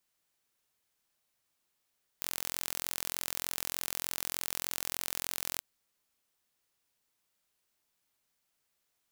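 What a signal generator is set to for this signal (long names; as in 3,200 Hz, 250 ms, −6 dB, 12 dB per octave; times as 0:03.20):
impulse train 43.3 per second, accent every 0, −7.5 dBFS 3.38 s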